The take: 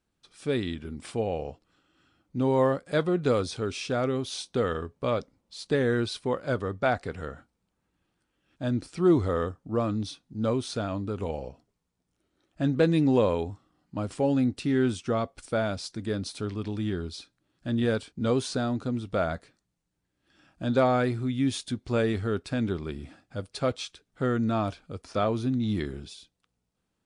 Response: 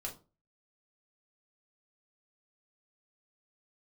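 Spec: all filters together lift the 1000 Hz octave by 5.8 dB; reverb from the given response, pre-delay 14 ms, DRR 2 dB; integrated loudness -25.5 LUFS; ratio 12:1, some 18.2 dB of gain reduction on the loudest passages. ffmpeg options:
-filter_complex "[0:a]equalizer=f=1k:t=o:g=8,acompressor=threshold=-34dB:ratio=12,asplit=2[a][b];[1:a]atrim=start_sample=2205,adelay=14[c];[b][c]afir=irnorm=-1:irlink=0,volume=-1dB[d];[a][d]amix=inputs=2:normalize=0,volume=11.5dB"

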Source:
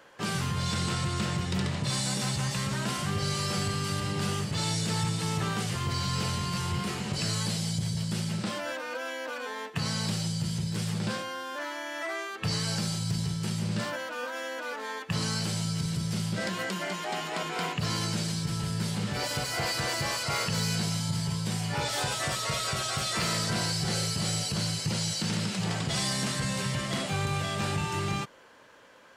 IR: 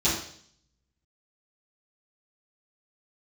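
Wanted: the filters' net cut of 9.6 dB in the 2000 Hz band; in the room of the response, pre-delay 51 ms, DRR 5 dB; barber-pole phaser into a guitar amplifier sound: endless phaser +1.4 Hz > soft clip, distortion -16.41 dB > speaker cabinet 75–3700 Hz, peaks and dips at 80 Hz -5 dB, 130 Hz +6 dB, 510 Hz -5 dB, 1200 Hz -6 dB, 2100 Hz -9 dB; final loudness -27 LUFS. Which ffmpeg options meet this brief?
-filter_complex "[0:a]equalizer=f=2k:t=o:g=-8,asplit=2[a][b];[1:a]atrim=start_sample=2205,adelay=51[c];[b][c]afir=irnorm=-1:irlink=0,volume=-18dB[d];[a][d]amix=inputs=2:normalize=0,asplit=2[e][f];[f]afreqshift=1.4[g];[e][g]amix=inputs=2:normalize=1,asoftclip=threshold=-26dB,highpass=75,equalizer=f=80:t=q:w=4:g=-5,equalizer=f=130:t=q:w=4:g=6,equalizer=f=510:t=q:w=4:g=-5,equalizer=f=1.2k:t=q:w=4:g=-6,equalizer=f=2.1k:t=q:w=4:g=-9,lowpass=f=3.7k:w=0.5412,lowpass=f=3.7k:w=1.3066,volume=7.5dB"

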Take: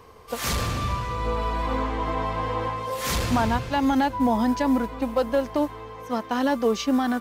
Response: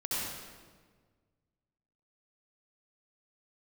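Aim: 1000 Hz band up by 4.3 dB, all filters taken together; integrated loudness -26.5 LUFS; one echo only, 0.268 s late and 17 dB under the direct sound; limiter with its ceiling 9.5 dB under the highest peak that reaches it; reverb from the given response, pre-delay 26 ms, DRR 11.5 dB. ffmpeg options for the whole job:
-filter_complex "[0:a]equalizer=f=1k:t=o:g=5,alimiter=limit=-18dB:level=0:latency=1,aecho=1:1:268:0.141,asplit=2[a][b];[1:a]atrim=start_sample=2205,adelay=26[c];[b][c]afir=irnorm=-1:irlink=0,volume=-17.5dB[d];[a][d]amix=inputs=2:normalize=0,volume=0.5dB"

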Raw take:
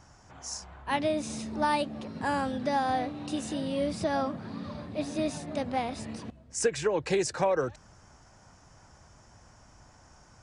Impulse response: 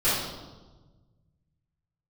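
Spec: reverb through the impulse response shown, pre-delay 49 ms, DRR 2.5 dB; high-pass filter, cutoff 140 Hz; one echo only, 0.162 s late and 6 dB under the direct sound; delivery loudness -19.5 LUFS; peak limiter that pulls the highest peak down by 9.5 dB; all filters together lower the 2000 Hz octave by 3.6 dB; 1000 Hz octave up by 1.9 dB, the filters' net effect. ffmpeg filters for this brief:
-filter_complex "[0:a]highpass=140,equalizer=f=1k:t=o:g=3.5,equalizer=f=2k:t=o:g=-6,alimiter=limit=-21.5dB:level=0:latency=1,aecho=1:1:162:0.501,asplit=2[a][b];[1:a]atrim=start_sample=2205,adelay=49[c];[b][c]afir=irnorm=-1:irlink=0,volume=-17dB[d];[a][d]amix=inputs=2:normalize=0,volume=10.5dB"

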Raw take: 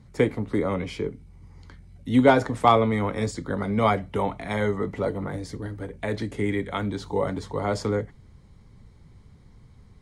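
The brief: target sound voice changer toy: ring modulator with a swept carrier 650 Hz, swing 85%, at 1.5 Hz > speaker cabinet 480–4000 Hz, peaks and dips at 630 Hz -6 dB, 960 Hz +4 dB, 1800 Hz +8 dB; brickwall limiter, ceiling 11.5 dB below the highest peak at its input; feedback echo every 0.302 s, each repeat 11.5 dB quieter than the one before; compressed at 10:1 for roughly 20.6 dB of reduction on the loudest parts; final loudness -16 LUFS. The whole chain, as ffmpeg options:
-af "acompressor=threshold=-33dB:ratio=10,alimiter=level_in=7dB:limit=-24dB:level=0:latency=1,volume=-7dB,aecho=1:1:302|604|906:0.266|0.0718|0.0194,aeval=exprs='val(0)*sin(2*PI*650*n/s+650*0.85/1.5*sin(2*PI*1.5*n/s))':c=same,highpass=480,equalizer=f=630:t=q:w=4:g=-6,equalizer=f=960:t=q:w=4:g=4,equalizer=f=1.8k:t=q:w=4:g=8,lowpass=f=4k:w=0.5412,lowpass=f=4k:w=1.3066,volume=27.5dB"

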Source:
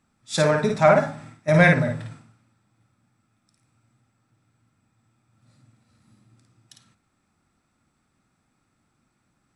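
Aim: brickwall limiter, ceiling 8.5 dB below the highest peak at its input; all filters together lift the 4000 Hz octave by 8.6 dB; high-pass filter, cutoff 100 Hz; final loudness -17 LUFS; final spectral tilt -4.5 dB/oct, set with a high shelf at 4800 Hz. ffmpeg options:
-af "highpass=100,equalizer=f=4k:t=o:g=6,highshelf=f=4.8k:g=8.5,volume=6dB,alimiter=limit=-5dB:level=0:latency=1"

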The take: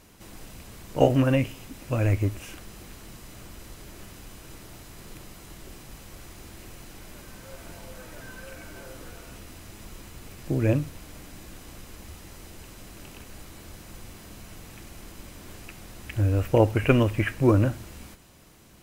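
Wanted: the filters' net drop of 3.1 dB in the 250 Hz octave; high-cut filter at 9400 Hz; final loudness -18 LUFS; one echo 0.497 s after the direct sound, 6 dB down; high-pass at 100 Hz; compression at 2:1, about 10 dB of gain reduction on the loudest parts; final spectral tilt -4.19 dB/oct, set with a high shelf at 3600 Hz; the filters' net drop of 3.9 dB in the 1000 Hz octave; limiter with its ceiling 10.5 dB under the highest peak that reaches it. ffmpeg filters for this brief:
-af "highpass=100,lowpass=9.4k,equalizer=f=250:t=o:g=-3.5,equalizer=f=1k:t=o:g=-6,highshelf=f=3.6k:g=8.5,acompressor=threshold=-34dB:ratio=2,alimiter=level_in=2.5dB:limit=-24dB:level=0:latency=1,volume=-2.5dB,aecho=1:1:497:0.501,volume=22.5dB"

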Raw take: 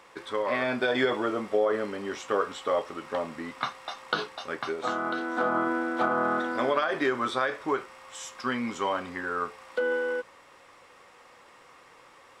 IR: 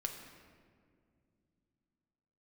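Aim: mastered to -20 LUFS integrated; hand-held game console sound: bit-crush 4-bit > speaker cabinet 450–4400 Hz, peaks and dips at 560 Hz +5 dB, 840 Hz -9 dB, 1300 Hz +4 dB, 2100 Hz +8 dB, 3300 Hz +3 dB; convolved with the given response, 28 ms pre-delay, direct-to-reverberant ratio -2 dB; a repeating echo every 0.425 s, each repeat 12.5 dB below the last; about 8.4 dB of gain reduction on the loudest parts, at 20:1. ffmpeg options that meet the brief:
-filter_complex "[0:a]acompressor=threshold=-29dB:ratio=20,aecho=1:1:425|850|1275:0.237|0.0569|0.0137,asplit=2[a][b];[1:a]atrim=start_sample=2205,adelay=28[c];[b][c]afir=irnorm=-1:irlink=0,volume=2dB[d];[a][d]amix=inputs=2:normalize=0,acrusher=bits=3:mix=0:aa=0.000001,highpass=450,equalizer=f=560:t=q:w=4:g=5,equalizer=f=840:t=q:w=4:g=-9,equalizer=f=1.3k:t=q:w=4:g=4,equalizer=f=2.1k:t=q:w=4:g=8,equalizer=f=3.3k:t=q:w=4:g=3,lowpass=f=4.4k:w=0.5412,lowpass=f=4.4k:w=1.3066,volume=8dB"

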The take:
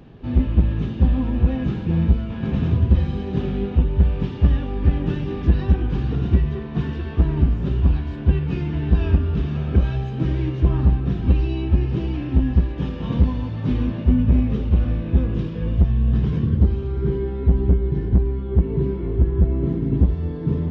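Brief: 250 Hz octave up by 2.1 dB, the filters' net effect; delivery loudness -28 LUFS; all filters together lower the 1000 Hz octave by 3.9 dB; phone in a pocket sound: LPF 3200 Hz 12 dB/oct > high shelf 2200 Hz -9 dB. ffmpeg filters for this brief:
-af "lowpass=3.2k,equalizer=f=250:t=o:g=3,equalizer=f=1k:t=o:g=-3.5,highshelf=f=2.2k:g=-9,volume=-7.5dB"

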